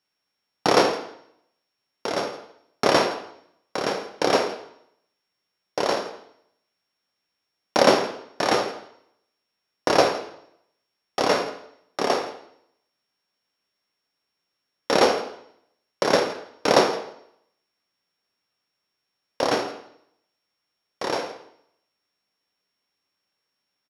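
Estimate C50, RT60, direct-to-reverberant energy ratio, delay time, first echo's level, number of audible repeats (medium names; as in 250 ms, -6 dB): 9.0 dB, 0.70 s, 5.5 dB, 166 ms, -19.5 dB, 1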